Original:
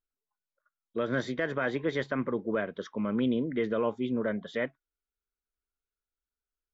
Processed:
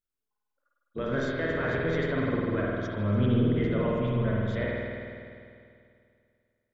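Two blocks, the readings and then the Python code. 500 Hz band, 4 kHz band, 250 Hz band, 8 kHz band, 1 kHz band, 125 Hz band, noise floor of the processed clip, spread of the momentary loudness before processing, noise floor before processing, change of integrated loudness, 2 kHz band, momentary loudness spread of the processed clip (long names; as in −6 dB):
+1.5 dB, +1.0 dB, +2.5 dB, can't be measured, +1.5 dB, +12.0 dB, −83 dBFS, 6 LU, below −85 dBFS, +3.0 dB, +2.0 dB, 13 LU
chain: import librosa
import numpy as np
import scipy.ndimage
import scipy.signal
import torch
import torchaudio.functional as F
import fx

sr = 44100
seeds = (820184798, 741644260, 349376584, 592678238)

p1 = fx.octave_divider(x, sr, octaves=1, level_db=0.0)
p2 = fx.high_shelf(p1, sr, hz=5900.0, db=4.5)
p3 = p2 + fx.echo_single(p2, sr, ms=287, db=-21.5, dry=0)
p4 = fx.rev_spring(p3, sr, rt60_s=2.4, pass_ms=(49,), chirp_ms=35, drr_db=-4.0)
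y = p4 * librosa.db_to_amplitude(-4.0)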